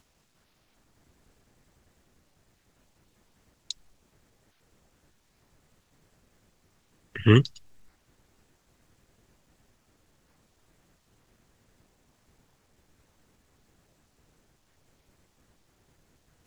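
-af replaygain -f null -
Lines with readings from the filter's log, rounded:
track_gain = +51.0 dB
track_peak = 0.405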